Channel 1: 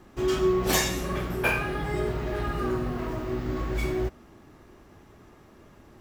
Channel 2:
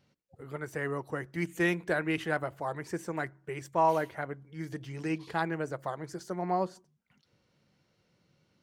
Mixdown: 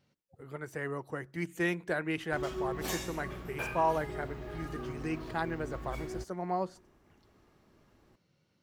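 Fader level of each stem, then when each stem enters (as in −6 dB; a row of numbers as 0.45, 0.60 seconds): −12.5, −3.0 decibels; 2.15, 0.00 seconds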